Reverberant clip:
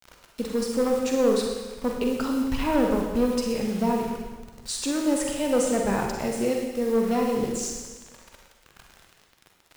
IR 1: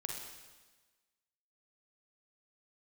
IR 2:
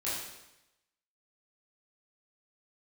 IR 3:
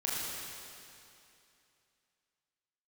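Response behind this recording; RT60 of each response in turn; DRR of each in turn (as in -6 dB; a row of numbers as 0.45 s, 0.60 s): 1; 1.3 s, 0.90 s, 2.7 s; 0.5 dB, -10.5 dB, -6.5 dB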